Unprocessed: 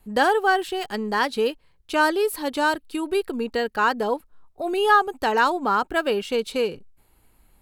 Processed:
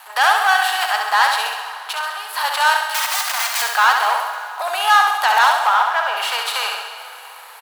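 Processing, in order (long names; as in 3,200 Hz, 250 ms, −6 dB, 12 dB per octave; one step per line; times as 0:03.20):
compressor on every frequency bin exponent 0.6
0:01.46–0:02.36: downward compressor 6 to 1, threshold −29 dBFS, peak gain reduction 15.5 dB
0:02.87–0:03.62: wrap-around overflow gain 22.5 dB
0:05.67–0:06.17: high-frequency loss of the air 440 metres
leveller curve on the samples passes 2
Butterworth high-pass 760 Hz 36 dB per octave
repeating echo 67 ms, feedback 56%, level −5 dB
dense smooth reverb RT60 3.8 s, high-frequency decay 0.7×, DRR 9 dB
level −1 dB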